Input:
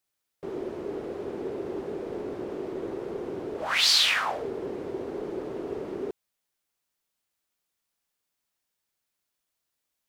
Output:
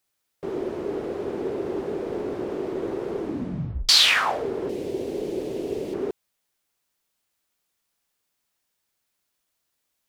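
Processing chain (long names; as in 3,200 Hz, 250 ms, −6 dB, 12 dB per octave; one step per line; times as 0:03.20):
0:03.18: tape stop 0.71 s
0:04.69–0:05.94: drawn EQ curve 540 Hz 0 dB, 1,300 Hz −13 dB, 2,600 Hz +3 dB, 12,000 Hz +10 dB
level +5 dB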